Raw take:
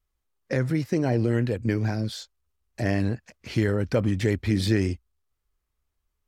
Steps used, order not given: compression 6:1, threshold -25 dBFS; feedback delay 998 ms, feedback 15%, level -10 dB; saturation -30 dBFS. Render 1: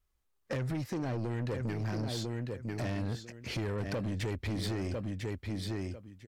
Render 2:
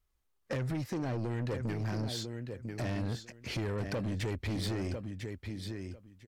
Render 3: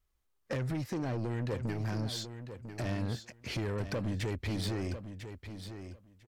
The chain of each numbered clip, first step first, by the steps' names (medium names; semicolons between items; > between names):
feedback delay > compression > saturation; compression > feedback delay > saturation; compression > saturation > feedback delay